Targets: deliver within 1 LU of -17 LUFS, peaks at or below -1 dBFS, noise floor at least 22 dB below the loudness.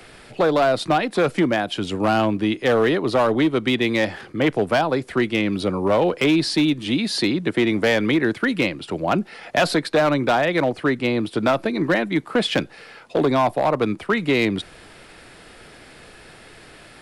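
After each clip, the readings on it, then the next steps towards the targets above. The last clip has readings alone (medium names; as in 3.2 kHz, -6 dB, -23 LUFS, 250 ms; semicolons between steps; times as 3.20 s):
clipped samples 1.7%; clipping level -12.0 dBFS; loudness -20.5 LUFS; peak level -12.0 dBFS; loudness target -17.0 LUFS
-> clip repair -12 dBFS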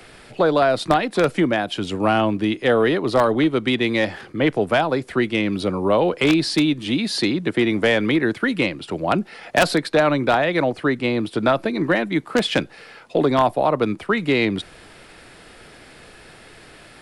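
clipped samples 0.0%; loudness -20.0 LUFS; peak level -3.0 dBFS; loudness target -17.0 LUFS
-> trim +3 dB; peak limiter -1 dBFS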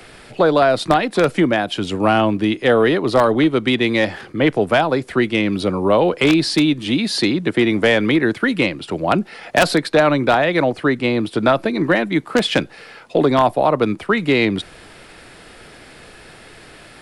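loudness -17.0 LUFS; peak level -1.0 dBFS; noise floor -43 dBFS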